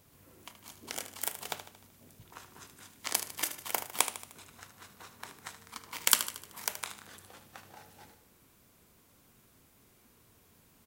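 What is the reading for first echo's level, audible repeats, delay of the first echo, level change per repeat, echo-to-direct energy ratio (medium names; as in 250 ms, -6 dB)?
-11.5 dB, 5, 76 ms, -6.0 dB, -10.0 dB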